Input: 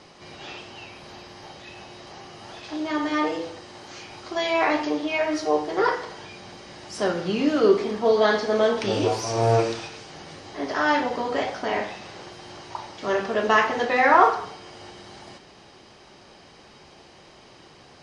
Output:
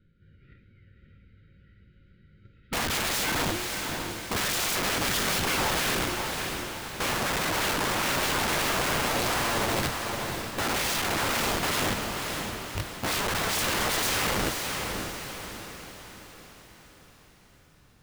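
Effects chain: RIAA curve playback; gate -32 dBFS, range -25 dB; Chebyshev band-stop 550–1400 Hz, order 5; tone controls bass +5 dB, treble -3 dB; de-hum 71.7 Hz, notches 18; compressor 10:1, threshold -19 dBFS, peak gain reduction 14 dB; formant shift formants -5 st; wrapped overs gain 28 dB; on a send: diffused feedback echo 0.56 s, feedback 49%, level -4.5 dB; on the sum: gain +4.5 dB

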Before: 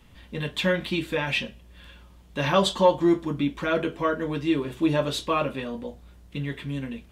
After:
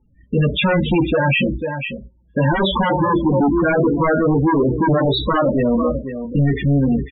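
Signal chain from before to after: gate -42 dBFS, range -41 dB; high shelf 3300 Hz -10 dB; power-law curve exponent 0.7; on a send: echo 0.496 s -12 dB; on the sum: sine folder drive 12 dB, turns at -7.5 dBFS; loudest bins only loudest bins 16; gain -4 dB

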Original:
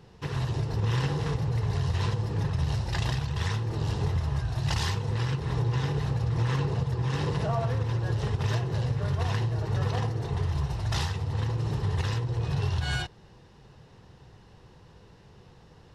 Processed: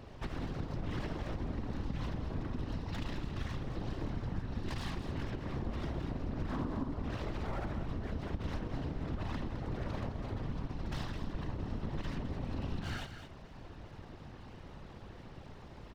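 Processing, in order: air absorption 160 m; full-wave rectifier; whisperiser; 6.49–6.92 fifteen-band EQ 250 Hz +11 dB, 1000 Hz +7 dB, 2500 Hz -4 dB; compressor 2.5:1, threshold -46 dBFS, peak gain reduction 17.5 dB; echo 0.211 s -9.5 dB; gain +4.5 dB

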